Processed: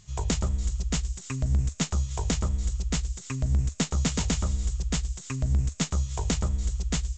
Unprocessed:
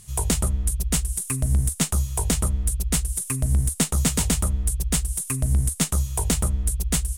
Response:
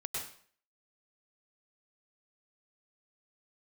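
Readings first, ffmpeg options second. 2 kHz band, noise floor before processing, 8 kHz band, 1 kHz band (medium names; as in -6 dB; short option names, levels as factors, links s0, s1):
-3.5 dB, -39 dBFS, -10.0 dB, -3.5 dB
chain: -filter_complex "[0:a]aresample=16000,aresample=44100,asplit=2[s0][s1];[s1]aderivative[s2];[1:a]atrim=start_sample=2205,asetrate=24255,aresample=44100,adelay=111[s3];[s2][s3]afir=irnorm=-1:irlink=0,volume=0.178[s4];[s0][s4]amix=inputs=2:normalize=0,volume=0.668"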